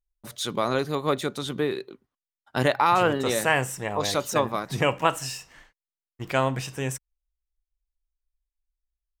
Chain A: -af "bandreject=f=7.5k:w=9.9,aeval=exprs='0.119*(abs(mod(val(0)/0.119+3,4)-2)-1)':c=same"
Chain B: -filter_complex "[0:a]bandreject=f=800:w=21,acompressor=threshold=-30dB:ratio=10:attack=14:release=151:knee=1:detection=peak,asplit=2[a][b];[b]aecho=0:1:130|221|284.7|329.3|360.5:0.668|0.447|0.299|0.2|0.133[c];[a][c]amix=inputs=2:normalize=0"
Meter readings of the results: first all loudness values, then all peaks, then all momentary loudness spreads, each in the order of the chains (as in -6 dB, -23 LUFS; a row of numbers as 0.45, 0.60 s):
-28.0, -31.5 LUFS; -18.5, -13.0 dBFS; 11, 11 LU